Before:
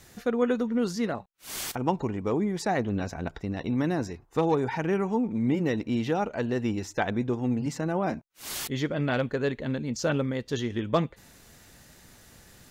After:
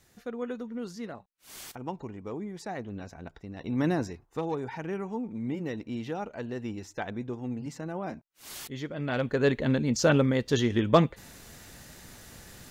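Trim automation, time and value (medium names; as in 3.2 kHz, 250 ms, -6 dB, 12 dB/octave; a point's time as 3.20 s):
3.52 s -10 dB
3.87 s +1.5 dB
4.41 s -7.5 dB
8.93 s -7.5 dB
9.49 s +4.5 dB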